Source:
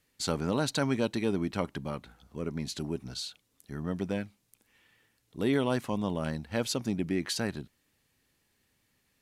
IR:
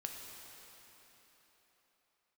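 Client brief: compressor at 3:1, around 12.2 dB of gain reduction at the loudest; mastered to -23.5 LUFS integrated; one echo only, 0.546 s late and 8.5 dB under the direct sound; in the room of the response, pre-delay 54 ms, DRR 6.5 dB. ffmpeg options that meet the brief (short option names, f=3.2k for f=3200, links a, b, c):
-filter_complex "[0:a]acompressor=threshold=-41dB:ratio=3,aecho=1:1:546:0.376,asplit=2[a][b];[1:a]atrim=start_sample=2205,adelay=54[c];[b][c]afir=irnorm=-1:irlink=0,volume=-5.5dB[d];[a][d]amix=inputs=2:normalize=0,volume=18.5dB"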